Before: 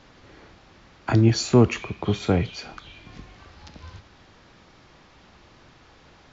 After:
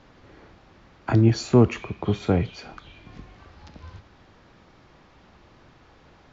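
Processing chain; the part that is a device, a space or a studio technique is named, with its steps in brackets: behind a face mask (high shelf 2400 Hz -7.5 dB)

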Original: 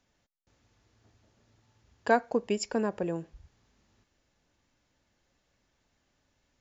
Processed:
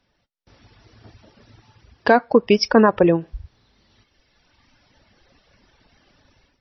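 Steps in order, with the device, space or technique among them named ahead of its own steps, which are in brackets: reverb removal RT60 1.9 s; 2.17–3.1 dynamic EQ 1200 Hz, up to +7 dB, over -51 dBFS, Q 1.9; low-bitrate web radio (AGC gain up to 14.5 dB; limiter -9 dBFS, peak gain reduction 7.5 dB; gain +6 dB; MP3 24 kbps 22050 Hz)

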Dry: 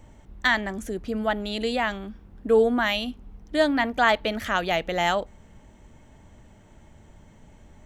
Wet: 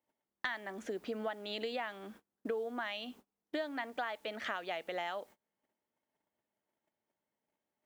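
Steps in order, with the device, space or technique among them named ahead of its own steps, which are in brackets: baby monitor (BPF 350–4100 Hz; compressor 10:1, threshold -35 dBFS, peak gain reduction 20.5 dB; white noise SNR 29 dB; gate -54 dBFS, range -31 dB)

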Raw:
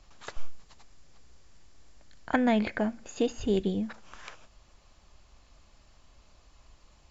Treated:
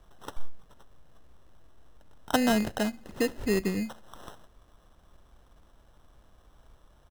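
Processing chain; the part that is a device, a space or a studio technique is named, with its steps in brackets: crushed at another speed (playback speed 0.8×; sample-and-hold 24×; playback speed 1.25×)

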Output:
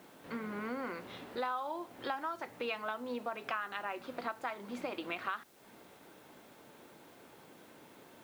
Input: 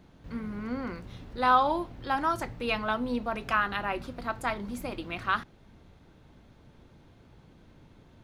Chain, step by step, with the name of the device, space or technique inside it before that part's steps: baby monitor (BPF 360–3800 Hz; compressor 6:1, threshold -41 dBFS, peak gain reduction 22 dB; white noise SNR 25 dB); gain +5.5 dB

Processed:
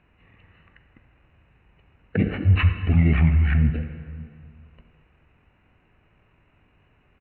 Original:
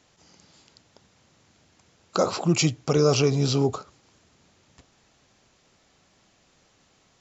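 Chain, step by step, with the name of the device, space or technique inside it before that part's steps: monster voice (pitch shift -10 st; formant shift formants -6 st; low shelf 170 Hz +8 dB; reverb RT60 2.1 s, pre-delay 39 ms, DRR 8 dB); gain -1.5 dB

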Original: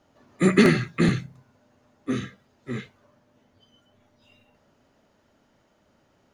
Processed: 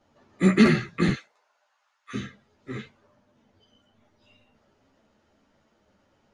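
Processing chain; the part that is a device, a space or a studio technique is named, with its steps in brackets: 1.13–2.13 HPF 470 Hz -> 1200 Hz 24 dB/oct; string-machine ensemble chorus (ensemble effect; LPF 7700 Hz 12 dB/oct); gain +1.5 dB

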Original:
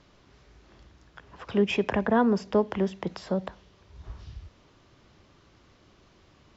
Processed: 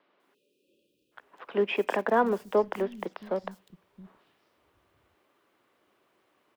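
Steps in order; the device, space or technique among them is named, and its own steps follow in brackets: phone line with mismatched companding (BPF 330–3300 Hz; G.711 law mismatch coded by A); spectral delete 0.34–1.12, 600–2400 Hz; three bands offset in time mids, highs, lows 0.2/0.67 s, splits 160/4500 Hz; gain +2 dB

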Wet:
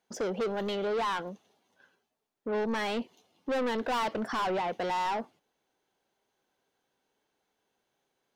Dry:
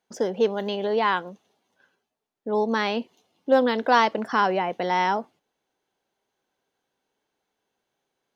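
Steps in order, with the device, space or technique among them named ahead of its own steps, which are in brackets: saturation between pre-emphasis and de-emphasis (high shelf 6100 Hz +9.5 dB; soft clip -27 dBFS, distortion -5 dB; high shelf 6100 Hz -9.5 dB)

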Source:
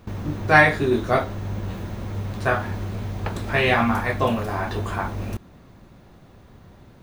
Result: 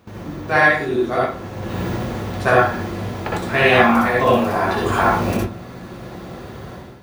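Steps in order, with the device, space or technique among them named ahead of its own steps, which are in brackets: far laptop microphone (reverb RT60 0.35 s, pre-delay 57 ms, DRR -3.5 dB; HPF 160 Hz 6 dB/oct; AGC gain up to 14 dB); gain -1 dB

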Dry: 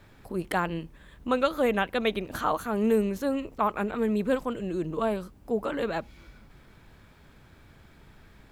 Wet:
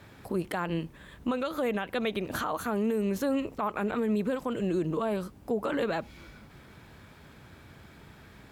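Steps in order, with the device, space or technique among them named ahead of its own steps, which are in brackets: podcast mastering chain (HPF 69 Hz 12 dB/oct; compressor 3:1, threshold -28 dBFS, peak gain reduction 7.5 dB; limiter -25 dBFS, peak gain reduction 8 dB; gain +4.5 dB; MP3 112 kbps 48000 Hz)

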